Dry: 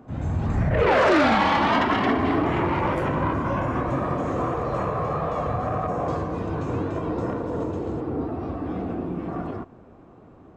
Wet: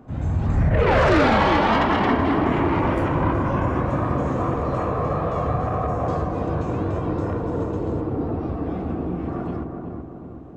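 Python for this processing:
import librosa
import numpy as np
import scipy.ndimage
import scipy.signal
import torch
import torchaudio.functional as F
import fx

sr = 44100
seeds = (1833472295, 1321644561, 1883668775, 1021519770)

p1 = fx.low_shelf(x, sr, hz=83.0, db=7.0)
y = p1 + fx.echo_filtered(p1, sr, ms=379, feedback_pct=56, hz=1100.0, wet_db=-4.0, dry=0)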